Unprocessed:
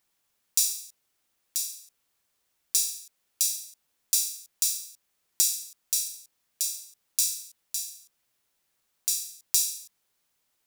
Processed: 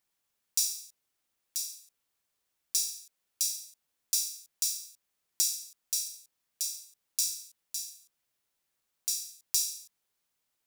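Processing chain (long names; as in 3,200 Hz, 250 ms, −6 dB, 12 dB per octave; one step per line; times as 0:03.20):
dynamic equaliser 5,400 Hz, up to +5 dB, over −43 dBFS, Q 2.9
level −6 dB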